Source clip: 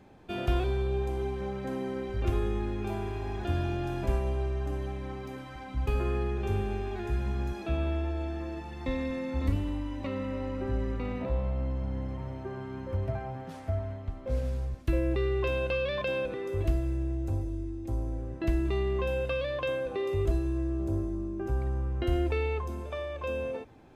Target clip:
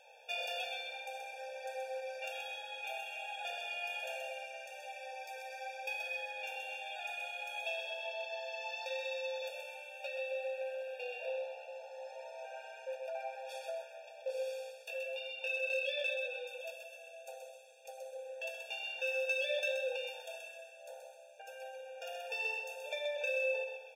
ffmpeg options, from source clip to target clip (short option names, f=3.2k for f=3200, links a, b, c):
-filter_complex "[0:a]highpass=110,highshelf=f=2.1k:t=q:w=3:g=6,acompressor=threshold=-37dB:ratio=2,asettb=1/sr,asplit=3[a][b][c];[a]atrim=end=14.714[d];[b]atrim=start=14.71:end=16.93,asetpts=PTS-STARTPTS,afade=t=in:d=0.004:c=qsin,afade=t=out:st=2.216:d=0.004:c=qsin,flanger=delay=16:depth=2.8:speed=1.7[e];[c]atrim=start=16.926[f];[d][e]acrossfade=d=0.004:c1=hsin:c2=qsin[g];[g][f]acrossfade=d=0.004:c1=qsin:c2=hsin,volume=31.5dB,asoftclip=hard,volume=-31.5dB,flanger=delay=5.7:depth=7:regen=-51:speed=0.65:shape=sinusoidal,aecho=1:1:128|256|384|512|640:0.531|0.202|0.0767|0.0291|0.0111,afftfilt=real='re*eq(mod(floor(b*sr/1024/470),2),1)':imag='im*eq(mod(floor(b*sr/1024/470),2),1)':win_size=1024:overlap=0.75,volume=5.5dB"